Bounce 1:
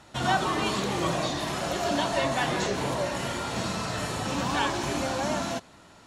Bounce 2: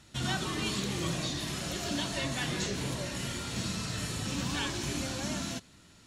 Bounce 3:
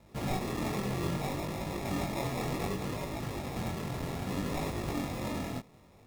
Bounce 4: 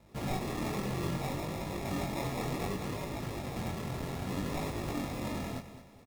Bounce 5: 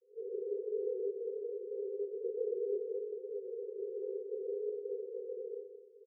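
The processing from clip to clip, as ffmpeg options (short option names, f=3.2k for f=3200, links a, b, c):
-af "equalizer=f=790:t=o:w=2.1:g=-14.5"
-af "acrusher=samples=29:mix=1:aa=0.000001,flanger=delay=19:depth=5.1:speed=0.64,volume=2.5dB"
-af "aecho=1:1:214|428|642|856:0.237|0.0925|0.0361|0.0141,volume=-1.5dB"
-af "asuperpass=centerf=440:order=20:qfactor=3.4,aecho=1:1:114:0.316,volume=8dB"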